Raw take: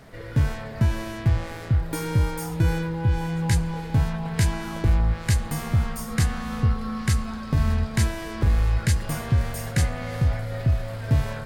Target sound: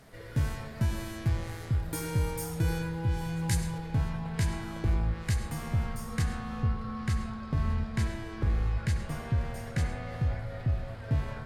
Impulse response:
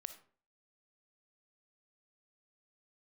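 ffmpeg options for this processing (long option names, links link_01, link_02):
-filter_complex "[0:a]asetnsamples=nb_out_samples=441:pad=0,asendcmd='3.78 highshelf g -3.5;6.22 highshelf g -11',highshelf=frequency=5600:gain=7.5[link_01];[1:a]atrim=start_sample=2205,asetrate=26019,aresample=44100[link_02];[link_01][link_02]afir=irnorm=-1:irlink=0,volume=-5.5dB"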